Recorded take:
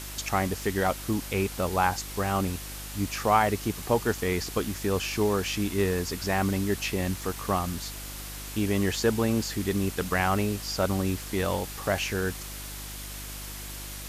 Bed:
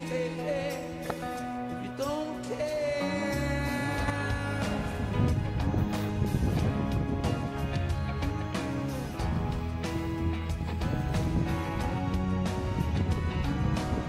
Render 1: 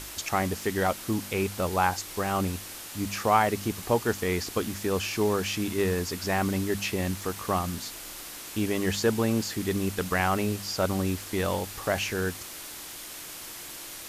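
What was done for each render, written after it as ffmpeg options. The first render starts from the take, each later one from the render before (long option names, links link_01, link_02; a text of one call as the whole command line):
ffmpeg -i in.wav -af "bandreject=frequency=50:width_type=h:width=4,bandreject=frequency=100:width_type=h:width=4,bandreject=frequency=150:width_type=h:width=4,bandreject=frequency=200:width_type=h:width=4,bandreject=frequency=250:width_type=h:width=4" out.wav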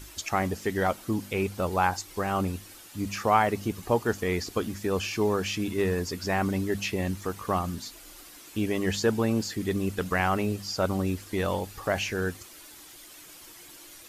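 ffmpeg -i in.wav -af "afftdn=noise_reduction=10:noise_floor=-41" out.wav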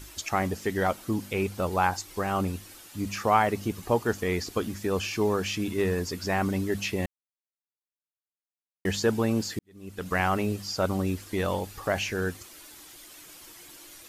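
ffmpeg -i in.wav -filter_complex "[0:a]asplit=4[link_01][link_02][link_03][link_04];[link_01]atrim=end=7.06,asetpts=PTS-STARTPTS,afade=type=out:start_time=7.056:duration=0.004:curve=hsin[link_05];[link_02]atrim=start=7.06:end=8.85,asetpts=PTS-STARTPTS,volume=0[link_06];[link_03]atrim=start=8.85:end=9.59,asetpts=PTS-STARTPTS,afade=type=in:duration=0.004:curve=hsin,afade=type=out:start_time=0.736:duration=0.004:curve=hsin[link_07];[link_04]atrim=start=9.59,asetpts=PTS-STARTPTS,afade=type=in:duration=0.57:curve=qua[link_08];[link_05][link_06][link_07][link_08]concat=n=4:v=0:a=1" out.wav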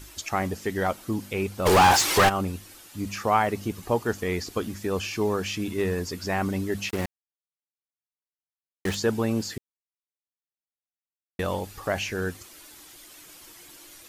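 ffmpeg -i in.wav -filter_complex "[0:a]asplit=3[link_01][link_02][link_03];[link_01]afade=type=out:start_time=1.65:duration=0.02[link_04];[link_02]asplit=2[link_05][link_06];[link_06]highpass=frequency=720:poles=1,volume=35dB,asoftclip=type=tanh:threshold=-9.5dB[link_07];[link_05][link_07]amix=inputs=2:normalize=0,lowpass=frequency=4700:poles=1,volume=-6dB,afade=type=in:start_time=1.65:duration=0.02,afade=type=out:start_time=2.28:duration=0.02[link_08];[link_03]afade=type=in:start_time=2.28:duration=0.02[link_09];[link_04][link_08][link_09]amix=inputs=3:normalize=0,asettb=1/sr,asplit=3[link_10][link_11][link_12];[link_10]atrim=end=6.894[link_13];[link_11]atrim=start=6.89:end=8.95,asetpts=PTS-STARTPTS,afade=type=in:duration=0.004:curve=qsin,afade=type=out:start_time=2.056:duration=0.004:curve=qsin,acrusher=bits=4:mix=0:aa=0.5[link_14];[link_12]atrim=start=8.946[link_15];[link_13][link_14]acrossfade=duration=0.004:curve1=hsin:curve2=qsin[link_16];[link_16][link_15]acrossfade=duration=0.004:curve1=qsin:curve2=hsin,asplit=3[link_17][link_18][link_19];[link_17]atrim=end=9.58,asetpts=PTS-STARTPTS,afade=type=out:start_time=9.576:duration=0.004:curve=hsin[link_20];[link_18]atrim=start=9.58:end=11.39,asetpts=PTS-STARTPTS,volume=0[link_21];[link_19]atrim=start=11.39,asetpts=PTS-STARTPTS,afade=type=in:duration=0.004:curve=hsin[link_22];[link_20][link_21][link_22]concat=n=3:v=0:a=1" out.wav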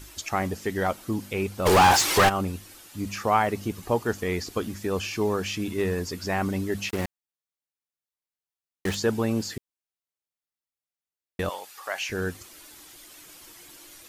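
ffmpeg -i in.wav -filter_complex "[0:a]asettb=1/sr,asplit=3[link_01][link_02][link_03];[link_01]atrim=end=11.494[link_04];[link_02]atrim=start=11.49:end=12.09,asetpts=PTS-STARTPTS,afade=type=in:duration=0.004:curve=qsin,afade=type=out:start_time=0.596:duration=0.004:curve=qsin,highpass=870[link_05];[link_03]atrim=start=12.086[link_06];[link_04][link_05]acrossfade=duration=0.004:curve1=hsin:curve2=qsin[link_07];[link_07][link_06]acrossfade=duration=0.004:curve1=qsin:curve2=hsin" out.wav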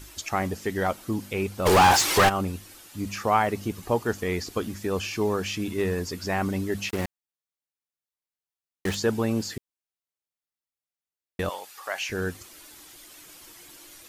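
ffmpeg -i in.wav -af anull out.wav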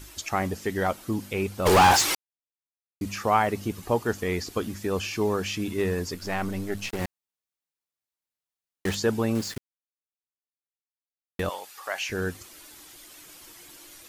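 ffmpeg -i in.wav -filter_complex "[0:a]asettb=1/sr,asplit=3[link_01][link_02][link_03];[link_01]atrim=end=6.144[link_04];[link_02]atrim=start=6.14:end=7.01,asetpts=PTS-STARTPTS,afade=type=in:duration=0.004:curve=qsin,afade=type=out:start_time=0.866:duration=0.004:curve=qsin,aeval=exprs='if(lt(val(0),0),0.447*val(0),val(0))':channel_layout=same[link_05];[link_03]atrim=start=7.006[link_06];[link_04][link_05]acrossfade=duration=0.004:curve1=hsin:curve2=qsin[link_07];[link_07][link_06]acrossfade=duration=0.004:curve1=qsin:curve2=hsin,asettb=1/sr,asplit=3[link_08][link_09][link_10];[link_08]atrim=end=9.354[link_11];[link_09]atrim=start=9.35:end=11.4,asetpts=PTS-STARTPTS,afade=type=in:duration=0.004:curve=qsin,afade=type=out:start_time=2.046:duration=0.004:curve=qsin,acrusher=bits=5:mix=0:aa=0.5[link_12];[link_10]atrim=start=11.396[link_13];[link_11][link_12]acrossfade=duration=0.004:curve1=hsin:curve2=qsin[link_14];[link_14][link_13]acrossfade=duration=0.004:curve1=qsin:curve2=hsin,asplit=3[link_15][link_16][link_17];[link_15]atrim=end=2.15,asetpts=PTS-STARTPTS,afade=type=out:start_time=2.146:duration=0.004:curve=hsin[link_18];[link_16]atrim=start=2.15:end=3.01,asetpts=PTS-STARTPTS,volume=0[link_19];[link_17]atrim=start=3.01,asetpts=PTS-STARTPTS,afade=type=in:duration=0.004:curve=hsin[link_20];[link_18][link_19][link_20]concat=n=3:v=0:a=1" out.wav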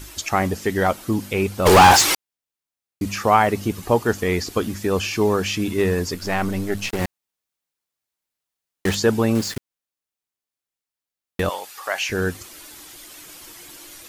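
ffmpeg -i in.wav -af "volume=6.5dB,alimiter=limit=-3dB:level=0:latency=1" out.wav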